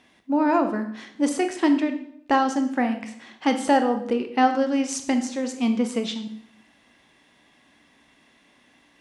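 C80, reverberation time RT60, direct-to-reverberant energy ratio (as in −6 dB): 13.0 dB, 0.70 s, 6.5 dB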